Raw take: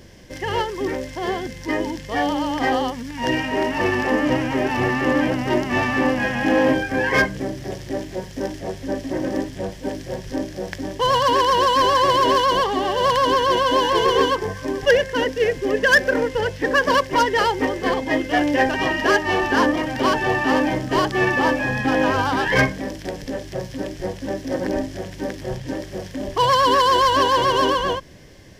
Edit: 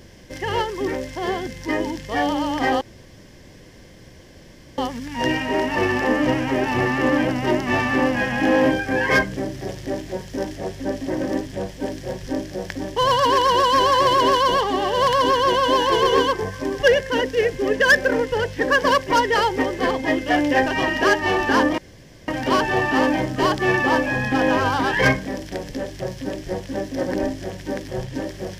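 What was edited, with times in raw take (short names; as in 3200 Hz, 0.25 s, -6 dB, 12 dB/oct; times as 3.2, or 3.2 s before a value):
2.81 insert room tone 1.97 s
19.81 insert room tone 0.50 s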